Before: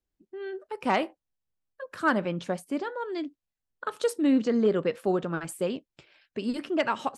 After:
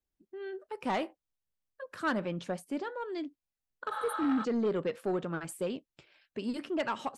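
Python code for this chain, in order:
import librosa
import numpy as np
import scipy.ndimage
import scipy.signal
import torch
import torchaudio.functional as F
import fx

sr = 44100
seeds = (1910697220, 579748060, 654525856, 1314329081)

y = fx.spec_repair(x, sr, seeds[0], start_s=3.94, length_s=0.48, low_hz=480.0, high_hz=8600.0, source='before')
y = 10.0 ** (-19.5 / 20.0) * np.tanh(y / 10.0 ** (-19.5 / 20.0))
y = y * librosa.db_to_amplitude(-4.0)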